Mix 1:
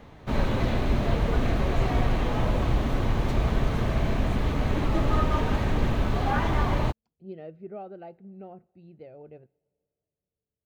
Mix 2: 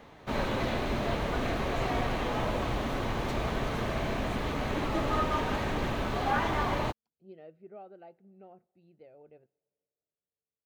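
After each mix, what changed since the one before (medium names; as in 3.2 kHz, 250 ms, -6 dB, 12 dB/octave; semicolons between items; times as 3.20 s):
speech -6.5 dB; master: add bass shelf 190 Hz -12 dB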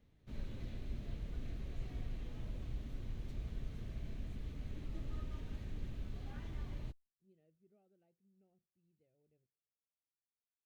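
master: add amplifier tone stack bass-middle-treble 10-0-1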